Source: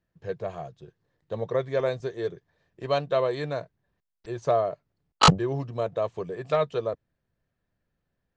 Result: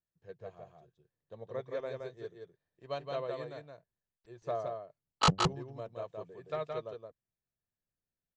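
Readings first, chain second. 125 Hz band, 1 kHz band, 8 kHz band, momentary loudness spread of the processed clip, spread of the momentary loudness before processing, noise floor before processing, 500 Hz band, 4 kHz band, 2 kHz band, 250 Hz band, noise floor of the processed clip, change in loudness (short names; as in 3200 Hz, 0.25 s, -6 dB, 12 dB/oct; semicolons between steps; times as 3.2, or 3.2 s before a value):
-9.0 dB, -9.0 dB, -8.0 dB, 24 LU, 18 LU, -82 dBFS, -12.0 dB, -8.0 dB, -9.0 dB, -9.5 dB, under -85 dBFS, -9.5 dB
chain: echo 0.17 s -3 dB; upward expander 1.5:1, over -34 dBFS; gain -8.5 dB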